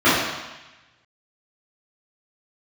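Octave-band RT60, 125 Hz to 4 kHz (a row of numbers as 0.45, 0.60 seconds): 1.4, 1.0, 1.0, 1.1, 1.2, 1.2 seconds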